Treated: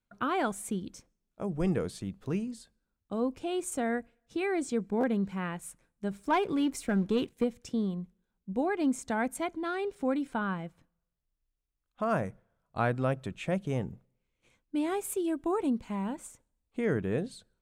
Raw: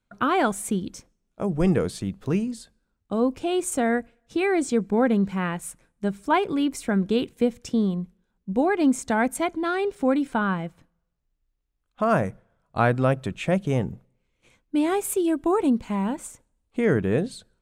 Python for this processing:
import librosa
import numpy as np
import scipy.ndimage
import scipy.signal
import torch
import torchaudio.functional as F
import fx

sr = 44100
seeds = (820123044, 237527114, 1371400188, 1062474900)

y = fx.leveller(x, sr, passes=1, at=(6.11, 7.44))
y = fx.buffer_glitch(y, sr, at_s=(5.0,), block=512, repeats=2)
y = F.gain(torch.from_numpy(y), -8.0).numpy()